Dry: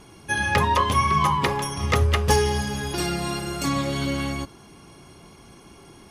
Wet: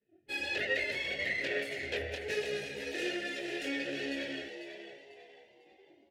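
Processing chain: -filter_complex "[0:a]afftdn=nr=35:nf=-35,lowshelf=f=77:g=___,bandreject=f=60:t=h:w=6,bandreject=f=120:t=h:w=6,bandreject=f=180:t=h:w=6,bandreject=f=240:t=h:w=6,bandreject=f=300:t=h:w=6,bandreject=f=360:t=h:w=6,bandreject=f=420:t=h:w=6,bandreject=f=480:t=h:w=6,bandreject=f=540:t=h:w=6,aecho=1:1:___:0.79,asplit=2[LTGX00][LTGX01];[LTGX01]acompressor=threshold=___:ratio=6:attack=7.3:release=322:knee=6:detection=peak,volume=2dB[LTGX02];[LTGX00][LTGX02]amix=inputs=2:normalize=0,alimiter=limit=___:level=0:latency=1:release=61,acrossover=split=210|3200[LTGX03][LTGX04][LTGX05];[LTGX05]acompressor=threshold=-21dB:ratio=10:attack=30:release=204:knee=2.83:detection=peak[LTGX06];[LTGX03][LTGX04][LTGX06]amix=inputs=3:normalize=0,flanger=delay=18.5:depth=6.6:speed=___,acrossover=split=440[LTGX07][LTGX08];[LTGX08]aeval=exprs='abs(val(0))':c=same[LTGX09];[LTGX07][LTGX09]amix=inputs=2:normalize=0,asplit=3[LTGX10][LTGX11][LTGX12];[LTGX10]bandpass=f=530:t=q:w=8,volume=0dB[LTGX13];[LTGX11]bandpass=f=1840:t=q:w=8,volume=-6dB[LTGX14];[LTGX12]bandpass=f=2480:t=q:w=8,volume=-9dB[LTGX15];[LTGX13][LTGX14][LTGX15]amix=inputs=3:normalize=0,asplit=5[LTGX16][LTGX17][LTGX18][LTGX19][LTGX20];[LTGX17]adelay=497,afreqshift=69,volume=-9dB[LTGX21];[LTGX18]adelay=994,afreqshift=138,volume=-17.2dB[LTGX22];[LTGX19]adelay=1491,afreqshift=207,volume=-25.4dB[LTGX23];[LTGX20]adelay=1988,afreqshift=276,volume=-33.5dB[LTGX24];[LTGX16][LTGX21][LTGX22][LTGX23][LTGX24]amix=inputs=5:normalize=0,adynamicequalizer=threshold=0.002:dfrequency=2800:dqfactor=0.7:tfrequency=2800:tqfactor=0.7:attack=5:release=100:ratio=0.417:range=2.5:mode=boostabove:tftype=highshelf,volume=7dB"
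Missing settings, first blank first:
-10, 2.8, -33dB, -11.5dB, 1.2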